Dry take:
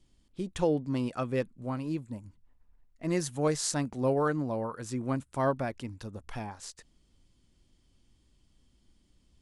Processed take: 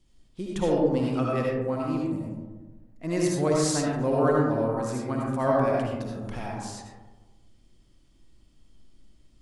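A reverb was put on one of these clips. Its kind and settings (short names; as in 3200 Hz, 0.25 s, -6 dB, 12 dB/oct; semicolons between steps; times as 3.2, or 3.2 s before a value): digital reverb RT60 1.3 s, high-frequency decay 0.3×, pre-delay 35 ms, DRR -3.5 dB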